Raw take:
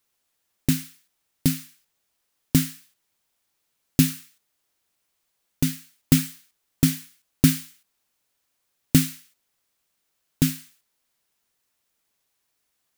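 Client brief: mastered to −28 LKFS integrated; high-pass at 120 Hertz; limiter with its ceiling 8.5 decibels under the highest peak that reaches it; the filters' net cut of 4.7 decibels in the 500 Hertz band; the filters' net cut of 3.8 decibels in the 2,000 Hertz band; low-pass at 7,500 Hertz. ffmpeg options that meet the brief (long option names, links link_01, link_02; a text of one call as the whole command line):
ffmpeg -i in.wav -af "highpass=120,lowpass=7500,equalizer=frequency=500:width_type=o:gain=-7,equalizer=frequency=2000:width_type=o:gain=-4.5,volume=3dB,alimiter=limit=-10.5dB:level=0:latency=1" out.wav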